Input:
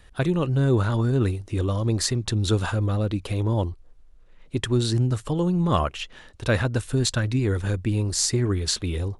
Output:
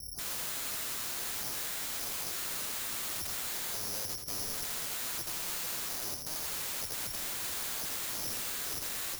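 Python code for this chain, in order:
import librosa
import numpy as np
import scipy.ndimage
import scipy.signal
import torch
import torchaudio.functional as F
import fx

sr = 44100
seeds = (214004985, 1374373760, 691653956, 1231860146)

p1 = fx.wiener(x, sr, points=25)
p2 = scipy.signal.sosfilt(scipy.signal.butter(2, 1700.0, 'lowpass', fs=sr, output='sos'), p1)
p3 = fx.peak_eq(p2, sr, hz=1300.0, db=-9.5, octaves=1.2)
p4 = p3 + fx.echo_single(p3, sr, ms=972, db=-20.0, dry=0)
p5 = 10.0 ** (-27.5 / 20.0) * np.tanh(p4 / 10.0 ** (-27.5 / 20.0))
p6 = scipy.signal.sosfilt(scipy.signal.butter(2, 56.0, 'highpass', fs=sr, output='sos'), p5)
p7 = fx.low_shelf(p6, sr, hz=370.0, db=8.5)
p8 = (np.kron(scipy.signal.resample_poly(p7, 1, 8), np.eye(8)[0]) * 8)[:len(p7)]
p9 = (np.mod(10.0 ** (20.5 / 20.0) * p8 + 1.0, 2.0) - 1.0) / 10.0 ** (20.5 / 20.0)
p10 = fx.echo_crushed(p9, sr, ms=83, feedback_pct=35, bits=10, wet_db=-6.5)
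y = p10 * librosa.db_to_amplitude(-3.5)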